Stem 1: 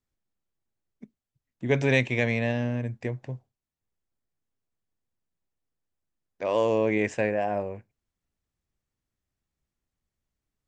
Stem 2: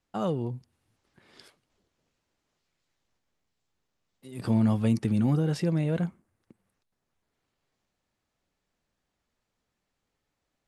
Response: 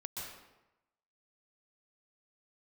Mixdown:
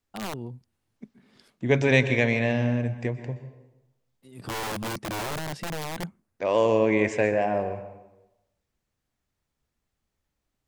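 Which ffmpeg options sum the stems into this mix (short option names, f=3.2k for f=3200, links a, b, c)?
-filter_complex "[0:a]volume=0.5dB,asplit=2[a][b];[b]volume=-7dB[c];[1:a]adynamicequalizer=threshold=0.0126:dfrequency=210:dqfactor=4.6:tfrequency=210:tqfactor=4.6:attack=5:release=100:ratio=0.375:range=2:mode=boostabove:tftype=bell,acontrast=56,aeval=exprs='(mod(5.62*val(0)+1,2)-1)/5.62':c=same,volume=-11.5dB[d];[2:a]atrim=start_sample=2205[e];[c][e]afir=irnorm=-1:irlink=0[f];[a][d][f]amix=inputs=3:normalize=0"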